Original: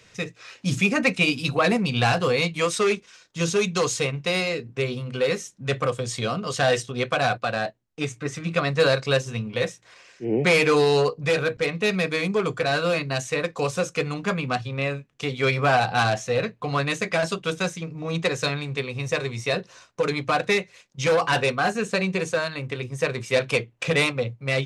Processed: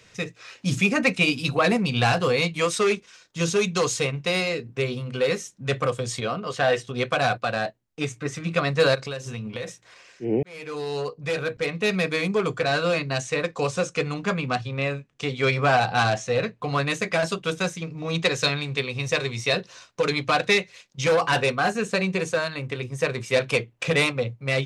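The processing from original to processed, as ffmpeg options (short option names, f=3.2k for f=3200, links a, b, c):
-filter_complex "[0:a]asettb=1/sr,asplit=3[a][b][c];[a]atrim=end=6.204[d];[b]atrim=start=6.2:end=6.87,asetpts=PTS-STARTPTS,afade=t=in:d=0.004:c=qsin,afade=t=out:st=0.666:d=0.004:c=qsin,bass=f=250:g=-5,treble=f=4k:g=-10[e];[c]atrim=start=6.866[f];[d][e]acrossfade=d=0.004:c1=hsin:c2=qsin[g];[g][f]acrossfade=d=0.004:c1=qsin:c2=hsin,asplit=3[h][i][j];[h]afade=t=out:st=8.94:d=0.02[k];[i]acompressor=threshold=-28dB:ratio=6:attack=3.2:release=140:knee=1:detection=peak,afade=t=in:st=8.94:d=0.02,afade=t=out:st=9.67:d=0.02[l];[j]afade=t=in:st=9.67:d=0.02[m];[k][l][m]amix=inputs=3:normalize=0,asettb=1/sr,asplit=3[n][o][p];[n]atrim=end=12.574[q];[o]atrim=start=12.57:end=16.6,asetpts=PTS-STARTPTS,afade=t=in:d=0.004:c=qsin,afade=t=out:st=4.026:d=0.004:c=qsin,lowpass=f=9.3k:w=0.5412,lowpass=f=9.3k:w=1.3066[r];[p]atrim=start=16.596[s];[q][r]acrossfade=d=0.004:c1=hsin:c2=qsin[t];[t][s]acrossfade=d=0.004:c1=qsin:c2=hsin,asettb=1/sr,asplit=3[u][v][w];[u]atrim=end=17.814[x];[v]atrim=start=17.81:end=21.01,asetpts=PTS-STARTPTS,afade=t=in:d=0.004:c=qsin,afade=t=out:st=3.196:d=0.004:c=qsin,equalizer=f=3.9k:t=o:w=1.7:g=5[y];[w]atrim=start=21.006[z];[x][y]acrossfade=d=0.004:c1=hsin:c2=qsin[aa];[aa][z]acrossfade=d=0.004:c1=qsin:c2=hsin,asplit=2[ab][ac];[ab]atrim=end=10.43,asetpts=PTS-STARTPTS,afade=t=out:st=10.426:d=0.004:c=hsin[ad];[ac]atrim=start=10.43,asetpts=PTS-STARTPTS,afade=t=in:d=1.53[ae];[ad][ae]concat=n=2:v=0:a=1"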